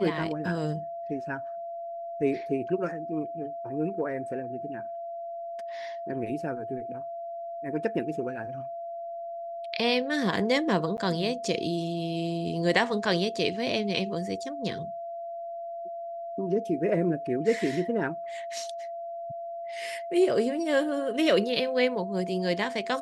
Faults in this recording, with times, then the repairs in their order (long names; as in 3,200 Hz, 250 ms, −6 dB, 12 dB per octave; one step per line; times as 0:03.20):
whistle 680 Hz −34 dBFS
0:10.97–0:10.98: drop-out 9.8 ms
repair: notch filter 680 Hz, Q 30
repair the gap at 0:10.97, 9.8 ms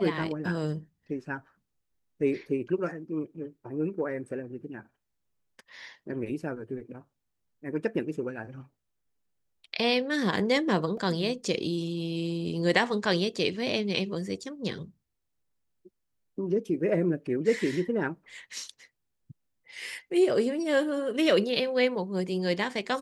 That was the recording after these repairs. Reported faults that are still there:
none of them is left